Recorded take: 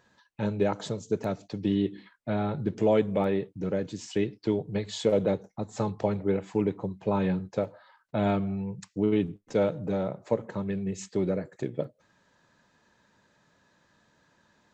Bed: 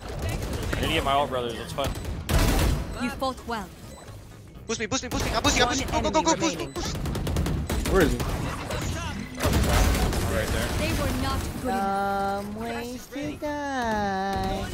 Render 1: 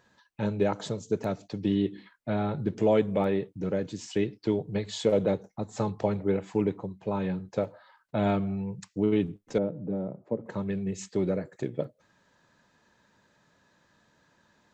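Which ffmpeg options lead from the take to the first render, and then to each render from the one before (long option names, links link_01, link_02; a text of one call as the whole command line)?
ffmpeg -i in.wav -filter_complex "[0:a]asettb=1/sr,asplit=3[link_01][link_02][link_03];[link_01]atrim=end=9.584[link_04];[link_02]atrim=start=9.58:end=10.46,asetpts=PTS-STARTPTS,afade=type=in:duration=0.004:curve=qsin,afade=type=out:start_time=0.876:duration=0.004:curve=qsin,bandpass=frequency=240:width_type=q:width=0.91[link_05];[link_03]atrim=start=10.456[link_06];[link_04][link_05]acrossfade=duration=0.004:curve1=hsin:curve2=qsin[link_07];[link_07][link_06]acrossfade=duration=0.004:curve1=qsin:curve2=hsin,asplit=3[link_08][link_09][link_10];[link_08]atrim=end=6.812[link_11];[link_09]atrim=start=6.808:end=7.482,asetpts=PTS-STARTPTS,volume=-3.5dB[link_12];[link_10]atrim=start=7.478[link_13];[link_11][link_12]acrossfade=duration=0.004:curve1=hsin:curve2=hsin[link_14];[link_14][link_13]acrossfade=duration=0.004:curve1=hsin:curve2=hsin" out.wav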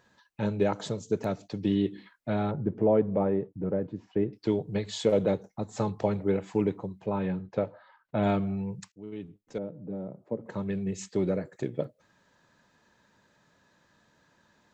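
ffmpeg -i in.wav -filter_complex "[0:a]asettb=1/sr,asplit=3[link_01][link_02][link_03];[link_01]atrim=end=2.514[link_04];[link_02]atrim=start=2.51:end=4.33,asetpts=PTS-STARTPTS,afade=type=in:duration=0.004:curve=qsin,afade=type=out:start_time=1.816:duration=0.004:curve=qsin,lowpass=1100[link_05];[link_03]atrim=start=4.326[link_06];[link_04][link_05]acrossfade=duration=0.004:curve1=hsin:curve2=qsin[link_07];[link_07][link_06]acrossfade=duration=0.004:curve1=qsin:curve2=hsin,asettb=1/sr,asplit=3[link_08][link_09][link_10];[link_08]atrim=end=7.064[link_11];[link_09]atrim=start=7.06:end=8.23,asetpts=PTS-STARTPTS,afade=type=in:duration=0.004:curve=qsin,afade=type=out:start_time=1.166:duration=0.004:curve=qsin,lowpass=3200[link_12];[link_10]atrim=start=8.226[link_13];[link_11][link_12]acrossfade=duration=0.004:curve1=hsin:curve2=qsin[link_14];[link_14][link_13]acrossfade=duration=0.004:curve1=qsin:curve2=hsin,asplit=2[link_15][link_16];[link_15]atrim=end=8.92,asetpts=PTS-STARTPTS,afade=type=out:start_time=8.916:duration=0.004:curve=hsin:silence=0.0749894[link_17];[link_16]atrim=start=8.92,asetpts=PTS-STARTPTS,afade=type=in:duration=1.9:silence=0.0749894[link_18];[link_17][link_18]concat=n=2:v=0:a=1" out.wav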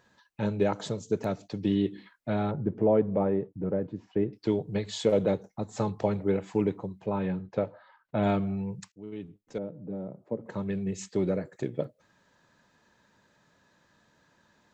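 ffmpeg -i in.wav -af anull out.wav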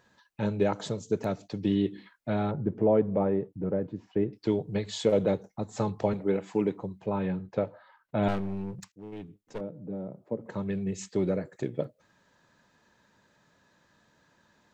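ffmpeg -i in.wav -filter_complex "[0:a]asettb=1/sr,asplit=3[link_01][link_02][link_03];[link_01]atrim=end=6.134[link_04];[link_02]atrim=start=6.13:end=6.82,asetpts=PTS-STARTPTS,afade=type=in:duration=0.004:curve=qsin,afade=type=out:start_time=0.686:duration=0.004:curve=qsin,highpass=150[link_05];[link_03]atrim=start=6.816[link_06];[link_04][link_05]acrossfade=duration=0.004:curve1=hsin:curve2=qsin[link_07];[link_07][link_06]acrossfade=duration=0.004:curve1=qsin:curve2=hsin,asettb=1/sr,asplit=3[link_08][link_09][link_10];[link_08]atrim=end=8.284[link_11];[link_09]atrim=start=8.28:end=9.61,asetpts=PTS-STARTPTS,afade=type=in:duration=0.004:curve=qsin,afade=type=out:start_time=1.326:duration=0.004:curve=qsin,aeval=exprs='clip(val(0),-1,0.0106)':channel_layout=same[link_12];[link_10]atrim=start=9.606[link_13];[link_11][link_12]acrossfade=duration=0.004:curve1=hsin:curve2=qsin[link_14];[link_14][link_13]acrossfade=duration=0.004:curve1=qsin:curve2=hsin" out.wav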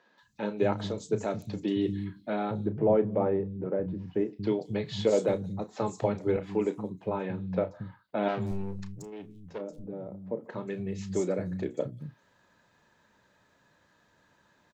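ffmpeg -i in.wav -filter_complex "[0:a]asplit=2[link_01][link_02];[link_02]adelay=33,volume=-11.5dB[link_03];[link_01][link_03]amix=inputs=2:normalize=0,acrossover=split=200|5400[link_04][link_05][link_06];[link_06]adelay=180[link_07];[link_04]adelay=230[link_08];[link_08][link_05][link_07]amix=inputs=3:normalize=0" out.wav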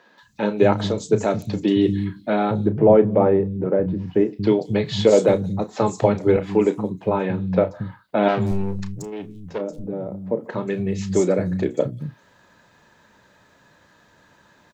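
ffmpeg -i in.wav -af "volume=10.5dB,alimiter=limit=-3dB:level=0:latency=1" out.wav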